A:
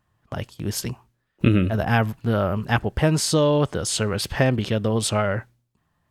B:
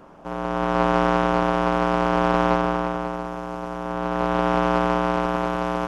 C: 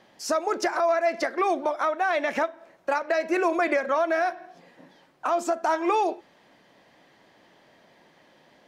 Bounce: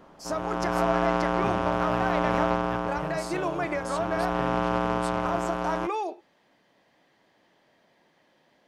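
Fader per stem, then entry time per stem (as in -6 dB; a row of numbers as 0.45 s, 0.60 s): -18.0 dB, -5.5 dB, -7.0 dB; 0.00 s, 0.00 s, 0.00 s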